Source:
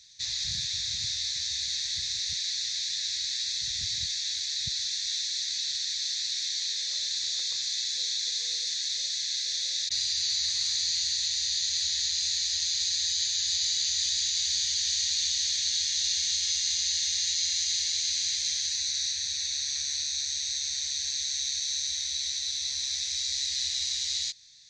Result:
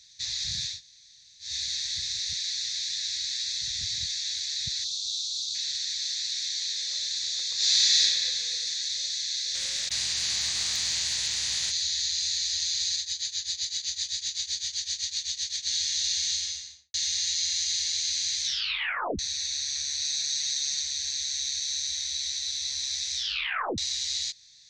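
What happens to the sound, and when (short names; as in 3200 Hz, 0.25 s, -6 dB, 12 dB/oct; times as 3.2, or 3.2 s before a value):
0.74–1.47 room tone, crossfade 0.16 s
4.84–5.55 elliptic band-stop 250–3300 Hz
7.55–8 reverb throw, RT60 2.7 s, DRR -12 dB
9.54–11.7 spectral contrast lowered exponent 0.57
12.96–15.67 tremolo triangle 7.8 Hz, depth 90%
16.31–16.94 studio fade out
18.43 tape stop 0.76 s
20.01–20.82 comb 6.5 ms, depth 80%
23.15 tape stop 0.63 s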